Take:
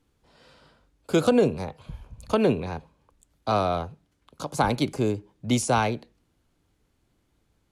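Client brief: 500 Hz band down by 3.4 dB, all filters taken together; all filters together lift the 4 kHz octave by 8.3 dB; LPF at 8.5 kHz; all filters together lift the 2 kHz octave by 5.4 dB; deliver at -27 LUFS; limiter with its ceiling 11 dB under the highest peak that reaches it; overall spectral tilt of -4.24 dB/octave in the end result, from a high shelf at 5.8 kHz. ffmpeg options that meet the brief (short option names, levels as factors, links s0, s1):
-af "lowpass=8500,equalizer=f=500:t=o:g=-4.5,equalizer=f=2000:t=o:g=5.5,equalizer=f=4000:t=o:g=7,highshelf=f=5800:g=4.5,volume=1.33,alimiter=limit=0.178:level=0:latency=1"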